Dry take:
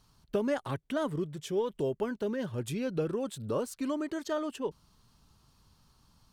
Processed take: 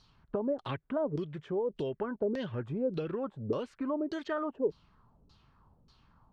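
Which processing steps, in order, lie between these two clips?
compressor, threshold -31 dBFS, peak gain reduction 6.5 dB; LFO low-pass saw down 1.7 Hz 370–4800 Hz

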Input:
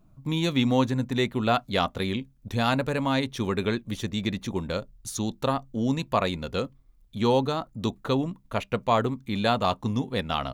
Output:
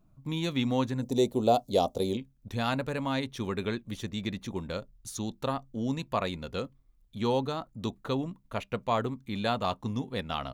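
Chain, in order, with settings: 1.02–2.17 EQ curve 170 Hz 0 dB, 490 Hz +10 dB, 770 Hz +6 dB, 1600 Hz -18 dB, 5600 Hz +9 dB; gain -5.5 dB

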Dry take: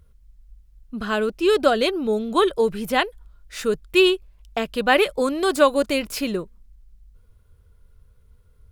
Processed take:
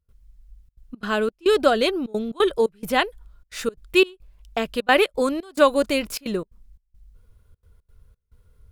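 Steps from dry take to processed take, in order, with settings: step gate ".xxxxxxx.xx.xxx." 175 bpm -24 dB

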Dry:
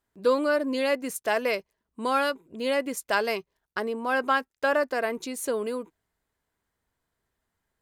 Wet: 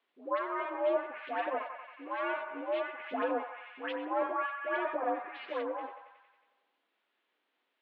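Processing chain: minimum comb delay 9.2 ms; band-limited delay 91 ms, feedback 61%, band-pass 1300 Hz, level -6.5 dB; treble ducked by the level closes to 1300 Hz, closed at -24.5 dBFS; harmonic tremolo 1.2 Hz, depth 70%, crossover 1100 Hz; dispersion highs, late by 0.132 s, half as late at 1200 Hz; requantised 12-bit, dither triangular; mistuned SSB +61 Hz 190–3400 Hz; gain -1 dB

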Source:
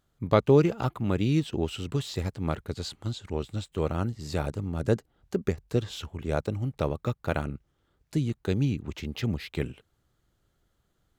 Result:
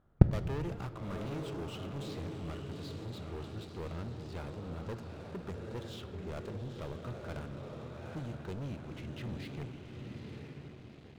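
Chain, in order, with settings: low-pass opened by the level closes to 1300 Hz, open at -22 dBFS; diffused feedback echo 0.853 s, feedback 49%, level -7.5 dB; in parallel at -4.5 dB: overloaded stage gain 12.5 dB; on the sum: sample leveller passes 5; flipped gate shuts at -14 dBFS, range -41 dB; on a send at -11 dB: reverb RT60 2.3 s, pre-delay 5 ms; on the sum: gain +10 dB

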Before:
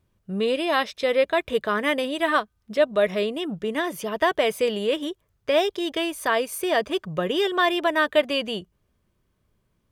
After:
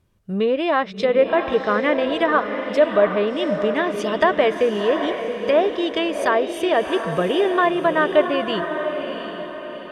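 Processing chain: treble ducked by the level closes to 1600 Hz, closed at -18.5 dBFS; 4.01–4.53 bell 13000 Hz +4 dB -> +14.5 dB 2.7 oct; diffused feedback echo 0.722 s, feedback 45%, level -7 dB; gain +4 dB

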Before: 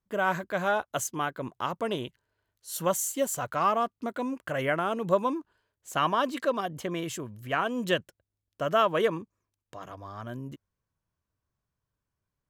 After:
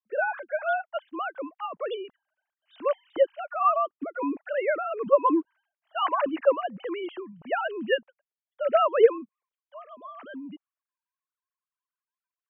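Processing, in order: sine-wave speech; gain +2.5 dB

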